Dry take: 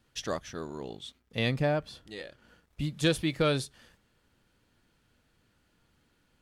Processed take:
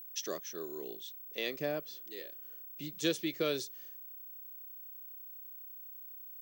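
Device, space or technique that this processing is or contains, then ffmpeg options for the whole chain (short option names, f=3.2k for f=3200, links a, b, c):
old television with a line whistle: -filter_complex "[0:a]highpass=f=190:w=0.5412,highpass=f=190:w=1.3066,equalizer=f=230:t=q:w=4:g=-9,equalizer=f=380:t=q:w=4:g=8,equalizer=f=860:t=q:w=4:g=-10,equalizer=f=1.4k:t=q:w=4:g=-4,equalizer=f=6k:t=q:w=4:g=8,lowpass=f=8k:w=0.5412,lowpass=f=8k:w=1.3066,aeval=exprs='val(0)+0.00631*sin(2*PI*15734*n/s)':c=same,asettb=1/sr,asplit=3[a][b][c];[a]atrim=end=1.024[d];[b]atrim=start=1.02:end=1.6,asetpts=PTS-STARTPTS,afade=t=in:d=0.004:c=qsin,afade=t=out:st=0.576:d=0.004:c=qsin,highpass=240[e];[c]atrim=start=1.596[f];[d][e]acrossfade=d=0.004:c1=hsin:c2=qsin[g];[g][f]acrossfade=d=0.004:c1=qsin:c2=hsin,highshelf=f=5k:g=5,volume=-6.5dB"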